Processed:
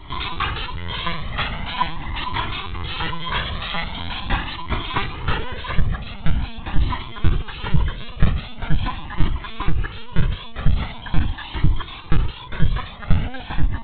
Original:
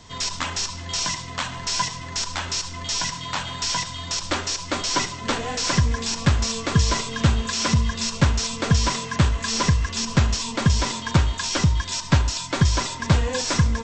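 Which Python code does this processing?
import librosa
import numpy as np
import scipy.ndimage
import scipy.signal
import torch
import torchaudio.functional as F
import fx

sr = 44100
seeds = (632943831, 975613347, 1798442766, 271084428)

y = fx.peak_eq(x, sr, hz=160.0, db=14.5, octaves=0.23)
y = fx.rider(y, sr, range_db=10, speed_s=0.5)
y = fx.lpc_vocoder(y, sr, seeds[0], excitation='pitch_kept', order=8)
y = fx.dynamic_eq(y, sr, hz=550.0, q=2.0, threshold_db=-44.0, ratio=4.0, max_db=-5)
y = fx.comb_cascade(y, sr, direction='rising', hz=0.43)
y = y * librosa.db_to_amplitude(3.0)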